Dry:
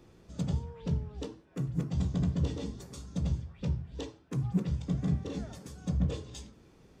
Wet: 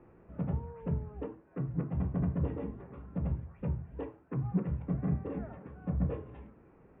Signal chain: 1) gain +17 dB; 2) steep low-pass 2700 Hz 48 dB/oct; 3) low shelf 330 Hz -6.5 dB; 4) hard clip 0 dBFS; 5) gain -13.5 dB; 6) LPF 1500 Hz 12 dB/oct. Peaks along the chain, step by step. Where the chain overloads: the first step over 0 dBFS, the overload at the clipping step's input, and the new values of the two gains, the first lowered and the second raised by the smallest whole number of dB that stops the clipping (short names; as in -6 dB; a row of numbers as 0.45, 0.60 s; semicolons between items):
-1.0, -1.0, -6.0, -6.0, -19.5, -19.5 dBFS; no overload